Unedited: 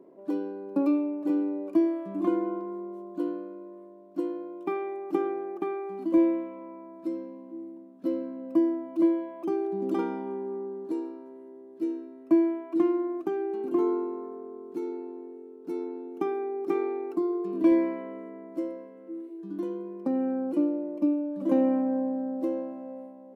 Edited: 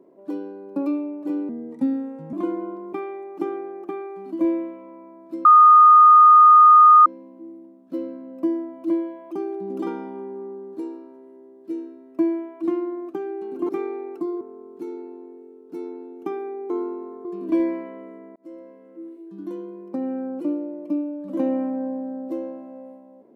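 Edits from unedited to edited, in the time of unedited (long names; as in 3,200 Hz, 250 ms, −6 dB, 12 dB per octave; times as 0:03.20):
0:01.49–0:02.17: play speed 81%
0:02.77–0:04.66: remove
0:07.18: insert tone 1,230 Hz −7 dBFS 1.61 s
0:13.81–0:14.36: swap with 0:16.65–0:17.37
0:18.48–0:19.07: fade in equal-power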